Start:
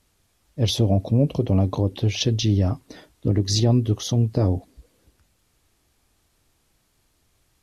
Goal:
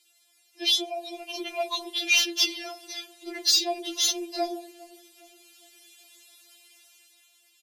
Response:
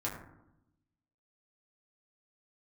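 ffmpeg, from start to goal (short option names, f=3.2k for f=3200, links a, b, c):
-filter_complex "[0:a]highpass=520,highshelf=f=1.8k:t=q:w=1.5:g=10,alimiter=limit=-7.5dB:level=0:latency=1:release=354,dynaudnorm=f=340:g=7:m=10dB,flanger=delay=2.9:depth=7.9:regen=-29:speed=0.62:shape=triangular,asoftclip=type=tanh:threshold=-12.5dB,asplit=2[a][b];[b]adelay=408,lowpass=f=1k:p=1,volume=-19dB,asplit=2[c][d];[d]adelay=408,lowpass=f=1k:p=1,volume=0.5,asplit=2[e][f];[f]adelay=408,lowpass=f=1k:p=1,volume=0.5,asplit=2[g][h];[h]adelay=408,lowpass=f=1k:p=1,volume=0.5[i];[a][c][e][g][i]amix=inputs=5:normalize=0,asplit=2[j][k];[1:a]atrim=start_sample=2205[l];[k][l]afir=irnorm=-1:irlink=0,volume=-14.5dB[m];[j][m]amix=inputs=2:normalize=0,afftfilt=real='re*4*eq(mod(b,16),0)':imag='im*4*eq(mod(b,16),0)':win_size=2048:overlap=0.75"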